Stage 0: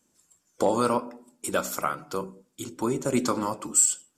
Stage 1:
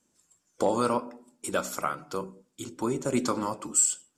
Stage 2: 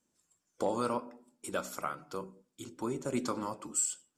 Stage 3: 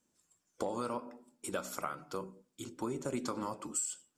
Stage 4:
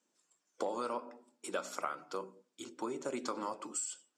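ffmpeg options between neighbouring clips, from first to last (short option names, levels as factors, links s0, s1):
-af "lowpass=11000,volume=0.794"
-af "equalizer=f=7300:w=1.5:g=-2,volume=0.473"
-af "acompressor=threshold=0.0224:ratio=6,volume=1.12"
-af "highpass=320,lowpass=7300,volume=1.12"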